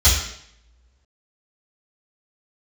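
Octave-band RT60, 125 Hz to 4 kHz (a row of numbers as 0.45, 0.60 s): 0.65, 0.80, 0.75, 0.70, 0.70, 0.70 s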